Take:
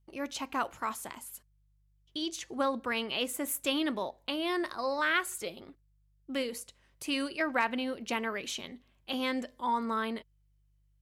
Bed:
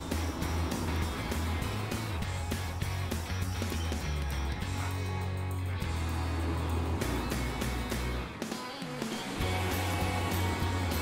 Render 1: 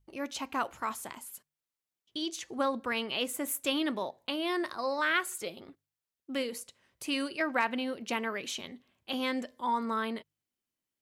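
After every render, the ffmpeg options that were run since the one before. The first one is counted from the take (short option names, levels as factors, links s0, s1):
-af "bandreject=f=50:t=h:w=4,bandreject=f=100:t=h:w=4,bandreject=f=150:t=h:w=4"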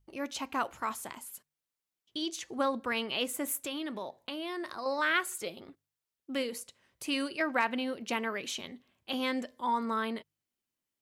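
-filter_complex "[0:a]asettb=1/sr,asplit=3[s0][s1][s2];[s0]atrim=end=3.574[s3];[s1]atrim=start=3.57:end=4.86,asetpts=PTS-STARTPTS,afade=t=in:d=0.004:c=qsin,afade=t=out:st=1.286:d=0.004:c=qsin,acompressor=threshold=0.0158:ratio=2.5:attack=3.2:release=140:knee=1:detection=peak[s4];[s2]atrim=start=4.856[s5];[s3][s4]acrossfade=d=0.004:c1=hsin:c2=qsin[s6];[s6][s5]acrossfade=d=0.004:c1=qsin:c2=hsin"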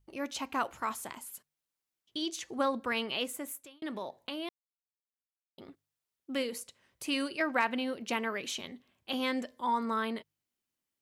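-filter_complex "[0:a]asplit=4[s0][s1][s2][s3];[s0]atrim=end=3.82,asetpts=PTS-STARTPTS,afade=t=out:st=3.08:d=0.74[s4];[s1]atrim=start=3.82:end=4.49,asetpts=PTS-STARTPTS,afade=t=in:d=0.004:c=hsin,afade=t=out:st=0.666:d=0.004:c=hsin[s5];[s2]atrim=start=4.49:end=5.58,asetpts=PTS-STARTPTS,volume=0[s6];[s3]atrim=start=5.58,asetpts=PTS-STARTPTS,afade=t=in:d=0.004:c=hsin[s7];[s4][s5][s6][s7]concat=n=4:v=0:a=1"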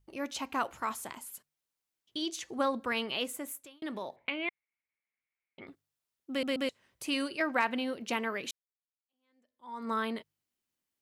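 -filter_complex "[0:a]asettb=1/sr,asplit=3[s0][s1][s2];[s0]atrim=end=4.164[s3];[s1]atrim=start=4.16:end=5.67,asetpts=PTS-STARTPTS,afade=t=in:d=0.004:c=qsin,afade=t=out:st=1.506:d=0.004:c=qsin,lowpass=f=2200:t=q:w=11[s4];[s2]atrim=start=5.666[s5];[s3][s4]acrossfade=d=0.004:c1=hsin:c2=qsin[s6];[s6][s5]acrossfade=d=0.004:c1=qsin:c2=hsin,asplit=5[s7][s8][s9][s10][s11];[s7]atrim=end=6.432[s12];[s8]atrim=start=6.298:end=6.432[s13];[s9]atrim=start=6.298:end=6.432[s14];[s10]atrim=start=6.688:end=8.51,asetpts=PTS-STARTPTS,afade=t=out:st=1.818:d=0.004:c=hsin[s15];[s11]atrim=start=8.51,asetpts=PTS-STARTPTS,afade=t=in:d=1.4:c=exp[s16];[s12][s13]acrossfade=d=0.004:c1=hsin:c2=hsin[s17];[s17][s14]acrossfade=d=0.004:c1=hsin:c2=hsin[s18];[s15][s16]concat=n=2:v=0:a=1[s19];[s18][s19]acrossfade=d=0.004:c1=hsin:c2=hsin"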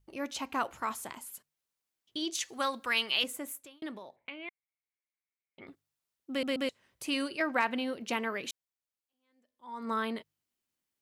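-filter_complex "[0:a]asettb=1/sr,asplit=3[s0][s1][s2];[s0]atrim=end=2.354[s3];[s1]atrim=start=2.35:end=3.24,asetpts=PTS-STARTPTS,afade=t=in:d=0.004:c=qsin,afade=t=out:st=0.886:d=0.004:c=qsin,tiltshelf=f=1100:g=-8.5[s4];[s2]atrim=start=3.236[s5];[s3][s4]acrossfade=d=0.004:c1=hsin:c2=qsin[s6];[s6][s5]acrossfade=d=0.004:c1=qsin:c2=hsin,asplit=3[s7][s8][s9];[s7]atrim=end=4.01,asetpts=PTS-STARTPTS,afade=t=out:st=3.82:d=0.19:silence=0.375837[s10];[s8]atrim=start=4.01:end=5.49,asetpts=PTS-STARTPTS,volume=0.376[s11];[s9]atrim=start=5.49,asetpts=PTS-STARTPTS,afade=t=in:d=0.19:silence=0.375837[s12];[s10][s11][s12]concat=n=3:v=0:a=1"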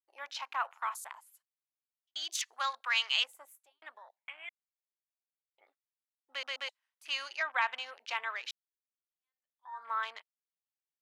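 -af "afwtdn=0.00447,highpass=f=830:w=0.5412,highpass=f=830:w=1.3066"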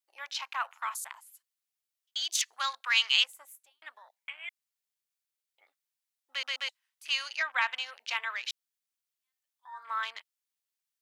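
-af "tiltshelf=f=1100:g=-7"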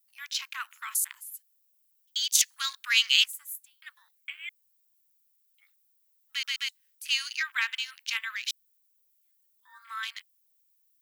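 -af "highpass=f=1400:w=0.5412,highpass=f=1400:w=1.3066,aemphasis=mode=production:type=bsi"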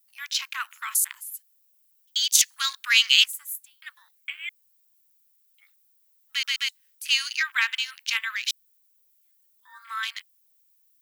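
-af "volume=1.78,alimiter=limit=0.708:level=0:latency=1"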